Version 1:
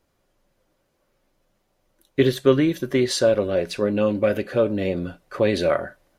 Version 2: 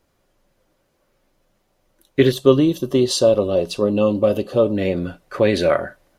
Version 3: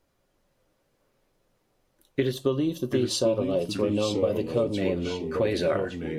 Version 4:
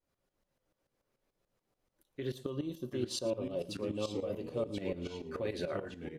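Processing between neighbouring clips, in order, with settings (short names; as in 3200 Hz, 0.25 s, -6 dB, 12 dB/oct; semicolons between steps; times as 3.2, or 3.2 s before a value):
spectral gain 2.32–4.75, 1300–2600 Hz -15 dB; gain +3.5 dB
reverb RT60 0.20 s, pre-delay 5 ms, DRR 12 dB; compressor 6:1, threshold -15 dBFS, peak gain reduction 9 dB; echoes that change speed 0.329 s, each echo -3 st, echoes 2, each echo -6 dB; gain -6 dB
tremolo saw up 6.9 Hz, depth 80%; echo 0.114 s -18.5 dB; gain -7.5 dB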